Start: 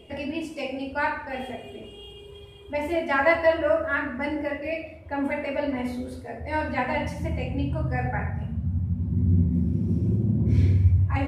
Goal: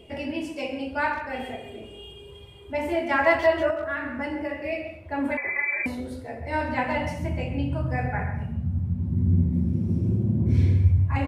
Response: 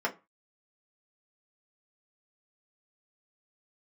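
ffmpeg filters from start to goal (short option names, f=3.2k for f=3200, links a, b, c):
-filter_complex "[0:a]asettb=1/sr,asplit=3[a][b][c];[a]atrim=end=3.704[d];[b]atrim=start=3.7:end=4.67,asetpts=PTS-STARTPTS,afade=t=in:d=0.004:c=qsin,afade=t=out:st=0.966:d=0.004:c=qsin,acompressor=threshold=-26dB:ratio=6[e];[c]atrim=start=4.666[f];[d][e]acrossfade=d=0.004:c1=hsin:c2=qsin[g];[g][f]acrossfade=d=0.004:c1=qsin:c2=hsin,asplit=2[h][i];[i]adelay=130,highpass=300,lowpass=3.4k,asoftclip=type=hard:threshold=-17.5dB,volume=-9dB[j];[h][j]amix=inputs=2:normalize=0,asettb=1/sr,asplit=3[k][l][m];[k]atrim=end=5.374[n];[l]atrim=start=5.37:end=5.86,asetpts=PTS-STARTPTS,afade=t=in:d=0.004:c=qsin,afade=t=out:st=0.486:d=0.004:c=qsin,lowpass=f=2.2k:t=q:w=0.5098,lowpass=f=2.2k:t=q:w=0.6013,lowpass=f=2.2k:t=q:w=0.9,lowpass=f=2.2k:t=q:w=2.563,afreqshift=-2600[o];[m]atrim=start=5.856[p];[n][o]acrossfade=d=0.004:c1=hsin:c2=qsin[q];[q][p]acrossfade=d=0.004:c1=qsin:c2=hsin"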